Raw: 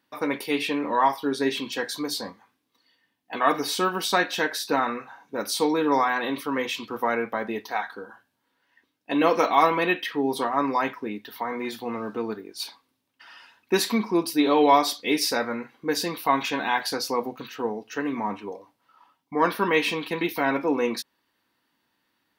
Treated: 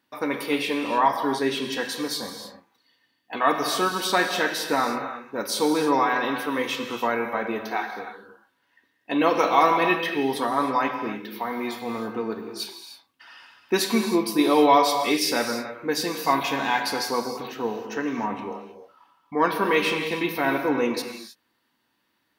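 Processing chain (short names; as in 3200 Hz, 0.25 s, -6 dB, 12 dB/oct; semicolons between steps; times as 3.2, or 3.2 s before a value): non-linear reverb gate 0.34 s flat, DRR 5 dB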